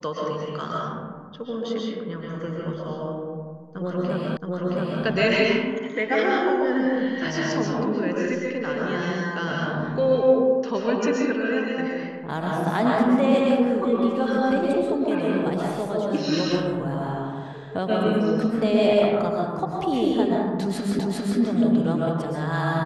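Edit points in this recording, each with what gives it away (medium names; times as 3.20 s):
4.37 s: repeat of the last 0.67 s
20.99 s: repeat of the last 0.4 s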